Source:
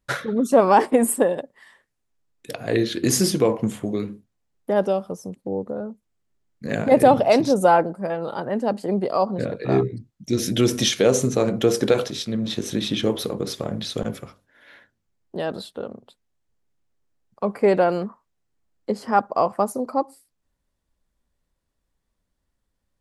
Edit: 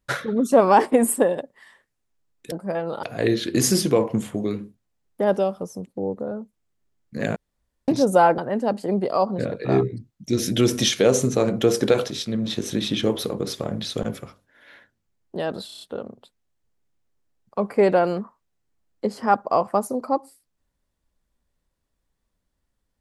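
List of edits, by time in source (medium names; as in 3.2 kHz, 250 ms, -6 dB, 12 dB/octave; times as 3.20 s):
6.85–7.37 s: room tone
7.87–8.38 s: move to 2.52 s
15.66 s: stutter 0.03 s, 6 plays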